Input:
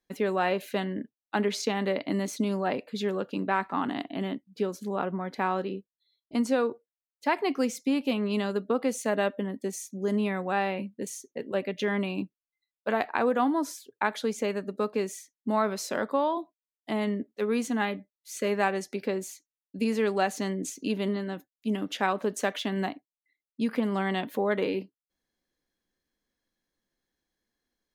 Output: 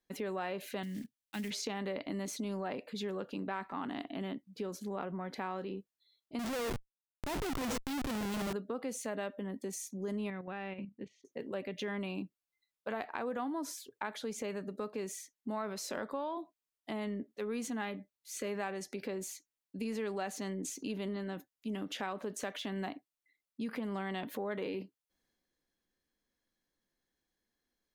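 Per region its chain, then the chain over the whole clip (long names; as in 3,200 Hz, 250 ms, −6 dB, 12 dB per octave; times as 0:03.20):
0:00.83–0:01.51: one scale factor per block 5 bits + flat-topped bell 700 Hz −13 dB 2.5 octaves
0:06.39–0:08.53: high-shelf EQ 9,400 Hz −9.5 dB + single-tap delay 127 ms −23 dB + comparator with hysteresis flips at −38.5 dBFS
0:10.30–0:11.25: low-pass filter 3,200 Hz 24 dB per octave + parametric band 820 Hz −8 dB 2.4 octaves + output level in coarse steps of 12 dB
whole clip: downward compressor 3 to 1, threshold −34 dBFS; transient designer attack −2 dB, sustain +4 dB; level −2.5 dB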